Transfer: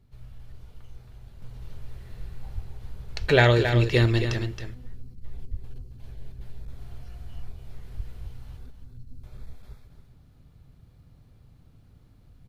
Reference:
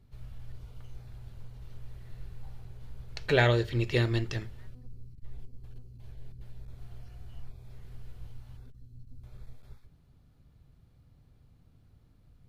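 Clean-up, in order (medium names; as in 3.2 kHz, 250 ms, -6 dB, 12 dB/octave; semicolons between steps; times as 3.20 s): de-plosive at 2.54/3.20/4.00/5.50/7.96 s; inverse comb 271 ms -8.5 dB; trim 0 dB, from 1.42 s -5.5 dB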